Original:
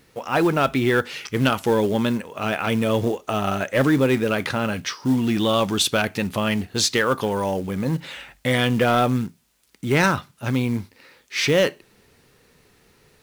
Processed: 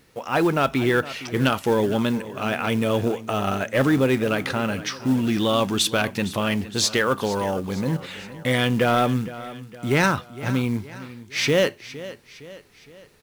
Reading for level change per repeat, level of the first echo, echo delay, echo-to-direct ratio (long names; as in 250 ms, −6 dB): −6.0 dB, −16.0 dB, 462 ms, −15.0 dB